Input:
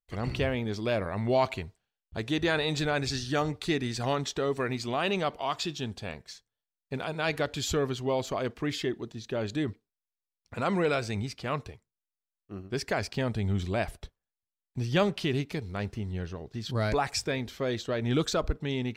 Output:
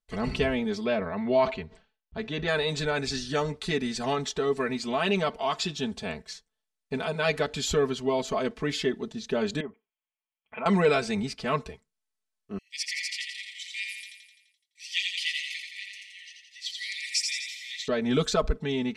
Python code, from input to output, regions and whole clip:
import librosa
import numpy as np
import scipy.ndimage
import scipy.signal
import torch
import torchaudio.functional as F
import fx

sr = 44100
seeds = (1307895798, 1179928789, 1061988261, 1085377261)

y = fx.chain(x, sr, fx.lowpass(hz=3700.0, slope=12),
    fx.sustainer(db_per_s=150.0), at=(0.84, 2.48))
y = fx.chain(y, sr, fx.env_lowpass_down(base_hz=1000.0, full_db=-28.5),
    fx.cheby_ripple(hz=3300.0, ripple_db=6),
    fx.tilt_eq(slope=3.5), at=(9.6, 10.66))
y = fx.chain(y, sr, fx.brickwall_highpass(low_hz=1800.0),
    fx.echo_feedback(ms=85, feedback_pct=59, wet_db=-4), at=(12.58, 17.88))
y = scipy.signal.sosfilt(scipy.signal.butter(4, 11000.0, 'lowpass', fs=sr, output='sos'), y)
y = y + 0.92 * np.pad(y, (int(4.6 * sr / 1000.0), 0))[:len(y)]
y = fx.rider(y, sr, range_db=3, speed_s=2.0)